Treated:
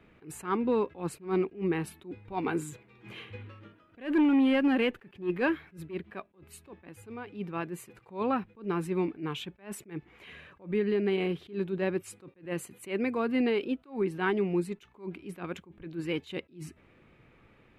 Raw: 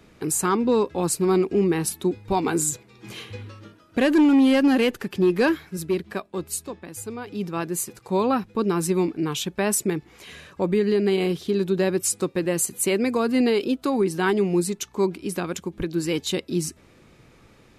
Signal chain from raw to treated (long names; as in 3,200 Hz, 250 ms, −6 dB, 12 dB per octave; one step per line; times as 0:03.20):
high shelf with overshoot 3,800 Hz −13 dB, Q 1.5
level that may rise only so fast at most 200 dB per second
level −7 dB